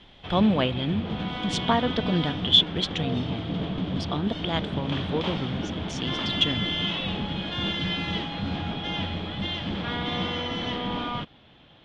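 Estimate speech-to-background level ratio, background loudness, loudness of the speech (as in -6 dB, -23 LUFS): 3.5 dB, -30.0 LUFS, -26.5 LUFS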